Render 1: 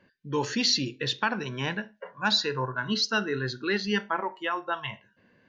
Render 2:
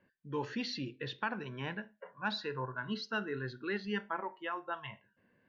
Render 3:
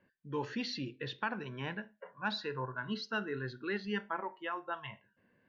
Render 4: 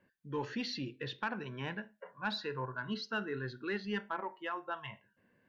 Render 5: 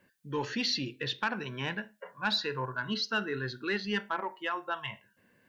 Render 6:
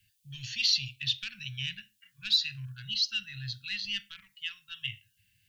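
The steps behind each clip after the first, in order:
low-pass 2.8 kHz 12 dB/octave; trim -8.5 dB
no audible change
saturation -23.5 dBFS, distortion -24 dB
treble shelf 2.8 kHz +10 dB; trim +3.5 dB
elliptic band-stop 110–2800 Hz, stop band 60 dB; trim +6.5 dB

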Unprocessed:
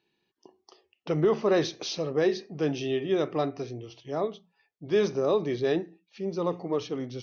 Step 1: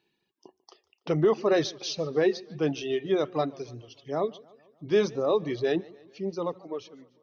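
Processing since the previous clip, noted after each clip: fade out at the end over 1.04 s; reverb removal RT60 1.9 s; modulated delay 148 ms, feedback 56%, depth 137 cents, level -23 dB; trim +1.5 dB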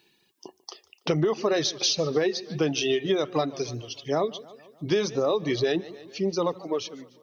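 treble shelf 3.1 kHz +10 dB; compression 10:1, threshold -28 dBFS, peak gain reduction 11 dB; trim +7.5 dB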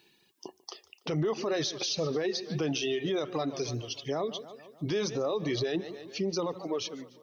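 peak limiter -22.5 dBFS, peak gain reduction 11 dB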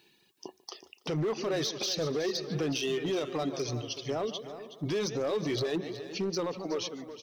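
hard clipper -26 dBFS, distortion -18 dB; delay 372 ms -12.5 dB

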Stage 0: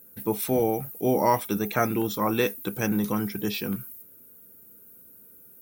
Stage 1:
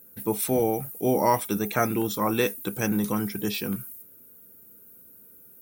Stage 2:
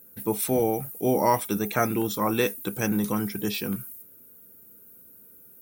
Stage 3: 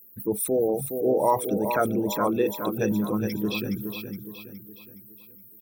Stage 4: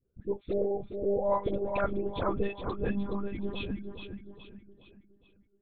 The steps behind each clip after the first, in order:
dynamic bell 8.9 kHz, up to +6 dB, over -53 dBFS, Q 1.4
no audible change
resonances exaggerated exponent 2; on a send: feedback delay 417 ms, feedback 44%, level -7 dB
monotone LPC vocoder at 8 kHz 200 Hz; phase dispersion highs, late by 57 ms, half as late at 860 Hz; trim -6 dB

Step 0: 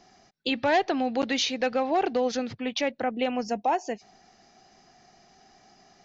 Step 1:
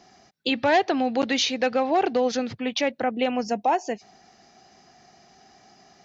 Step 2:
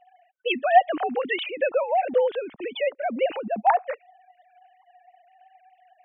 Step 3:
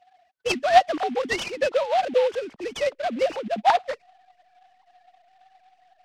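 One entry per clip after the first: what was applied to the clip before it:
high-pass 48 Hz; trim +3 dB
formants replaced by sine waves
in parallel at -11 dB: hysteresis with a dead band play -35.5 dBFS; on the sum: delay time shaken by noise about 2.3 kHz, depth 0.036 ms; trim -1.5 dB

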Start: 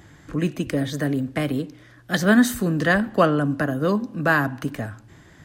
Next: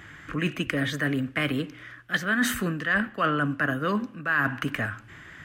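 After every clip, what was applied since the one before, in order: high-order bell 1.9 kHz +11.5 dB; reverse; compression 6:1, threshold -20 dBFS, peak gain reduction 14.5 dB; reverse; trim -2 dB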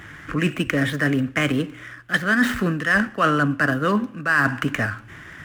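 median filter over 9 samples; trim +6 dB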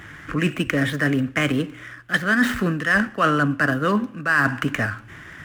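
no audible change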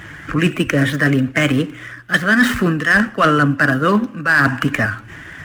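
coarse spectral quantiser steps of 15 dB; hard clipper -11.5 dBFS, distortion -25 dB; trim +6 dB

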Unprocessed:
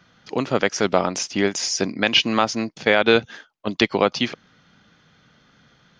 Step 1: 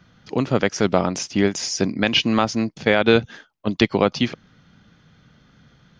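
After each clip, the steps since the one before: bass shelf 230 Hz +11.5 dB; trim -2 dB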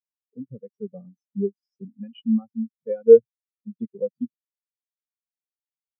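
comb of notches 320 Hz; in parallel at -6 dB: sine folder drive 4 dB, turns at -3.5 dBFS; on the sum: spectral contrast expander 4:1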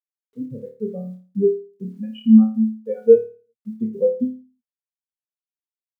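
level rider gain up to 4 dB; bit crusher 12-bit; on a send: flutter echo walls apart 4.7 m, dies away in 0.38 s; on the sum: trim +2 dB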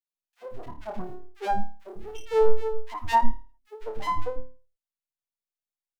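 Chebyshev shaper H 2 -33 dB, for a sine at -1 dBFS; full-wave rectifier; three bands offset in time highs, mids, lows 50/150 ms, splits 310/1700 Hz; trim -2 dB

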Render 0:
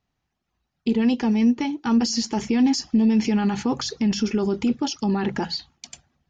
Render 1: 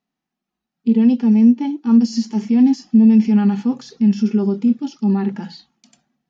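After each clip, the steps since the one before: harmonic-percussive split percussive -14 dB; resonant low shelf 140 Hz -13.5 dB, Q 3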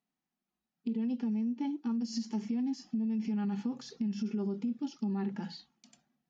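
peak limiter -13.5 dBFS, peak gain reduction 9 dB; compression 3:1, threshold -24 dBFS, peak gain reduction 6.5 dB; trim -8 dB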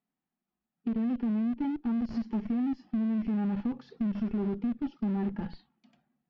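in parallel at -8 dB: Schmitt trigger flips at -35 dBFS; on the sum: distance through air 390 m; trim +2 dB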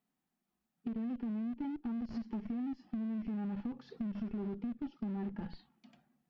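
compression 2.5:1, threshold -44 dBFS, peak gain reduction 11.5 dB; trim +2.5 dB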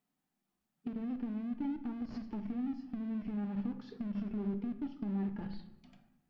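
simulated room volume 250 m³, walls mixed, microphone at 0.42 m

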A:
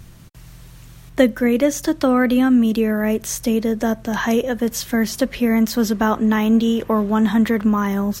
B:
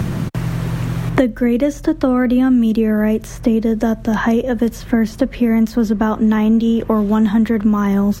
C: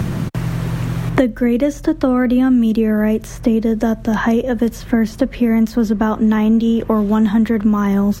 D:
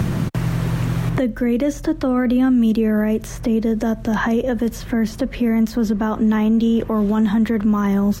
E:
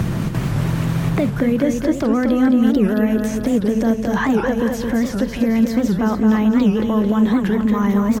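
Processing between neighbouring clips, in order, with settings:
tilt EQ -2 dB/octave; three bands compressed up and down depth 100%; trim -1.5 dB
no audible change
peak limiter -10.5 dBFS, peak gain reduction 9 dB
feedback delay 219 ms, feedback 56%, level -5 dB; warped record 78 rpm, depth 250 cents

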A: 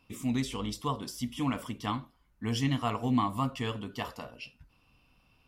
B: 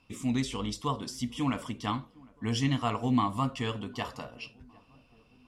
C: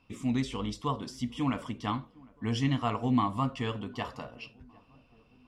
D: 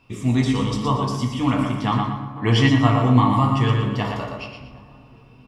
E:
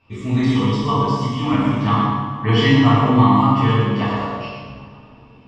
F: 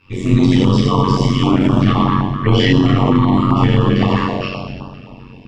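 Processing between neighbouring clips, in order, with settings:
Chebyshev low-pass 8.4 kHz, order 2; tape echo 757 ms, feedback 63%, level -23 dB, low-pass 1 kHz; trim +2 dB
treble shelf 5.3 kHz -10 dB
feedback delay 118 ms, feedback 32%, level -6 dB; on a send at -1 dB: reverberation RT60 1.3 s, pre-delay 4 ms; on the sum: time-frequency box 2.36–2.69 s, 270–4900 Hz +6 dB; trim +7.5 dB
low-pass 4.7 kHz 12 dB/octave; two-slope reverb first 0.8 s, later 2.6 s, DRR -9 dB; trim -6 dB
AM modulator 92 Hz, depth 65%; loudness maximiser +13 dB; step-sequenced notch 7.7 Hz 680–2100 Hz; trim -1 dB

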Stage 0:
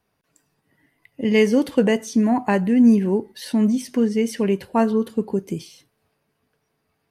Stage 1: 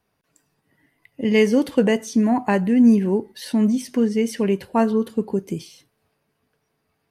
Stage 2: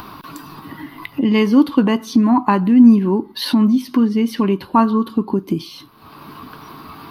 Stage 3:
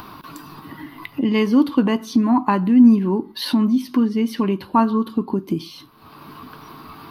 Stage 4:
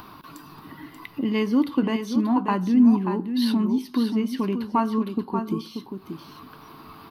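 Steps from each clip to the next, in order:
no audible change
FFT filter 100 Hz 0 dB, 220 Hz +4 dB, 310 Hz +10 dB, 470 Hz -6 dB, 710 Hz -1 dB, 1.1 kHz +15 dB, 1.8 kHz -3 dB, 4.1 kHz +6 dB, 7.6 kHz -15 dB, 13 kHz +3 dB; upward compressor, threshold -12 dBFS
reverberation RT60 0.30 s, pre-delay 7 ms, DRR 17.5 dB; trim -3 dB
delay 584 ms -7.5 dB; trim -5.5 dB

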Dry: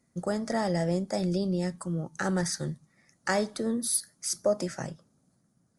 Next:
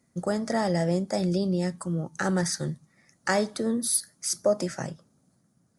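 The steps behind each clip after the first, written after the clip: high-pass 42 Hz; trim +2.5 dB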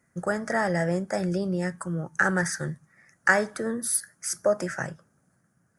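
fifteen-band graphic EQ 250 Hz -5 dB, 1.6 kHz +12 dB, 4 kHz -11 dB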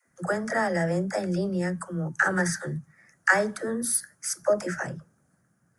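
phase dispersion lows, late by 77 ms, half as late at 340 Hz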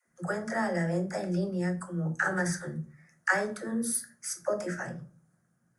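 simulated room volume 220 m³, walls furnished, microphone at 0.95 m; trim -6 dB

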